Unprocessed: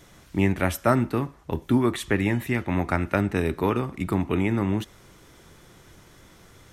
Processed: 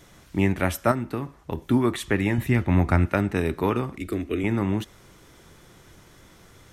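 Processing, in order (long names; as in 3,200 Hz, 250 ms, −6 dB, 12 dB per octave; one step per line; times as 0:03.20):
0:00.91–0:01.58: downward compressor, threshold −24 dBFS, peak gain reduction 7.5 dB
0:02.38–0:03.06: low-shelf EQ 160 Hz +11.5 dB
0:03.98–0:04.44: phaser with its sweep stopped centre 370 Hz, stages 4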